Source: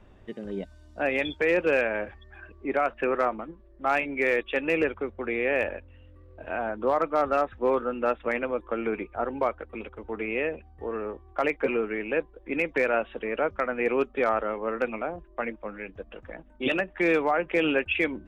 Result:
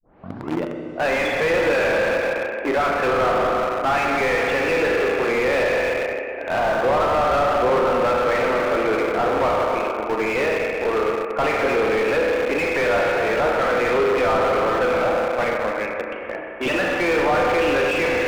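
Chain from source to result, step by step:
turntable start at the beginning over 0.66 s
parametric band 110 Hz −5.5 dB 2.9 octaves
spring reverb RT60 2.6 s, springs 32/42 ms, chirp 50 ms, DRR 0.5 dB
in parallel at −5 dB: bit reduction 5 bits
on the sum: mid-hump overdrive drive 28 dB, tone 1,100 Hz, clips at −5.5 dBFS
level −4.5 dB

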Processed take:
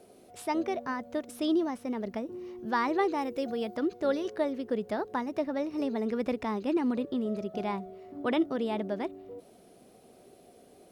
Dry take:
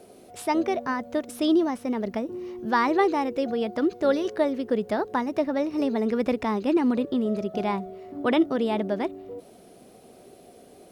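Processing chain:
0:03.17–0:03.75: high-shelf EQ 8,600 Hz → 5,000 Hz +9 dB
level −6 dB

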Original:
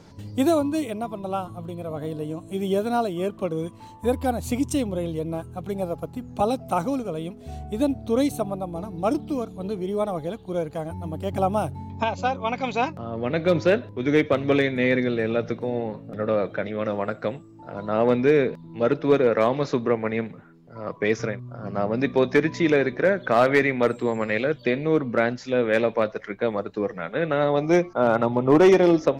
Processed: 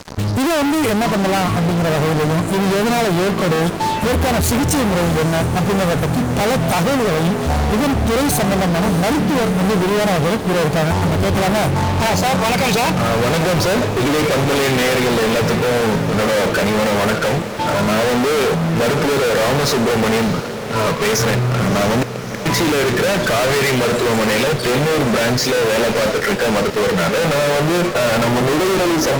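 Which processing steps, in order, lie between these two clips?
noise reduction from a noise print of the clip's start 7 dB
in parallel at −3 dB: brickwall limiter −20.5 dBFS, peak gain reduction 11 dB
0:21.95–0:22.46: on the sum: gate with flip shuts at −15 dBFS, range −40 dB
fuzz pedal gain 46 dB, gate −47 dBFS
on a send: feedback delay with all-pass diffusion 651 ms, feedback 76%, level −13 dB
on the sum: level −2 dB

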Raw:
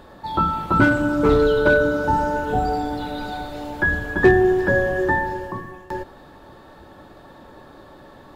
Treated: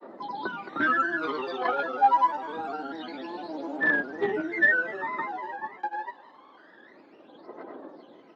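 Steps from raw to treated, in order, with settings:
phase shifter 0.26 Hz, delay 1.3 ms, feedback 80%
in parallel at −7 dB: wave folding −4 dBFS
on the sum: dynamic equaliser 370 Hz, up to −7 dB, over −25 dBFS, Q 0.91
on a send: repeating echo 82 ms, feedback 31%, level −16.5 dB
on the sum: granular cloud, grains 20 per second, pitch spread up and down by 3 semitones
high-pass filter 280 Hz 24 dB per octave
high-frequency loss of the air 220 metres
level −8 dB

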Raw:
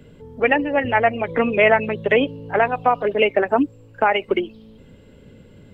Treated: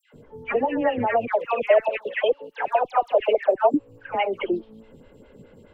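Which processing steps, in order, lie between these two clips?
parametric band 890 Hz +4.5 dB 1.5 octaves
brickwall limiter −11.5 dBFS, peak gain reduction 11 dB
0:01.14–0:03.61: auto-filter high-pass square 5.7 Hz 580–2,900 Hz
all-pass dispersion lows, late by 135 ms, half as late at 1,600 Hz
phaser with staggered stages 4.8 Hz

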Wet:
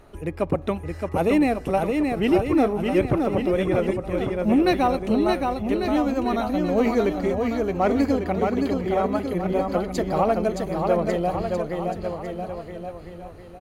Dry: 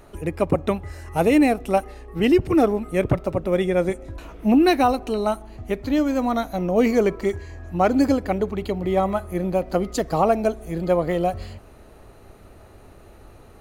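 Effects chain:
high-shelf EQ 12,000 Hz −7.5 dB
in parallel at −11 dB: soft clipping −16 dBFS, distortion −13 dB
on the sum: parametric band 7,400 Hz −3 dB 0.77 octaves
bouncing-ball delay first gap 620 ms, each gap 0.85×, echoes 5
level −4.5 dB

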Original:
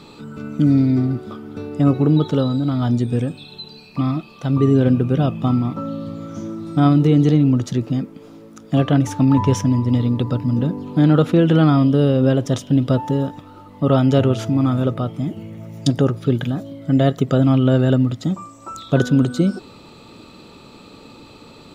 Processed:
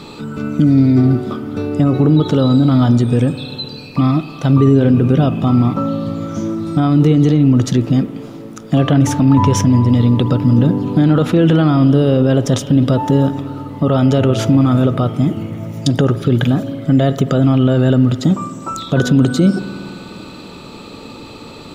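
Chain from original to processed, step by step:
brickwall limiter −12 dBFS, peak gain reduction 10 dB
on a send: convolution reverb RT60 2.8 s, pre-delay 51 ms, DRR 13.5 dB
on the sum: level +8.5 dB

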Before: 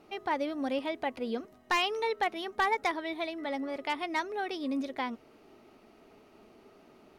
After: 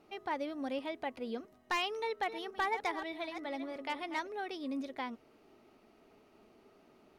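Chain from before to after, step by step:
0:01.90–0:04.29: delay that plays each chunk backwards 304 ms, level −10.5 dB
level −5.5 dB

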